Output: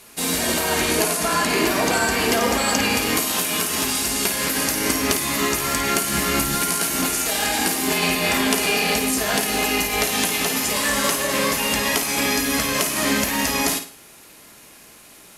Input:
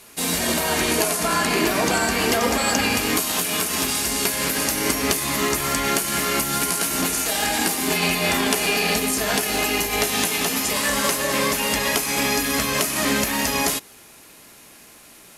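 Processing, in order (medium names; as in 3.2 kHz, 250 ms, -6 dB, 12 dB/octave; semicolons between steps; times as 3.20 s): 6.10–6.55 s: bass shelf 140 Hz +11.5 dB; flutter echo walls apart 9.2 m, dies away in 0.37 s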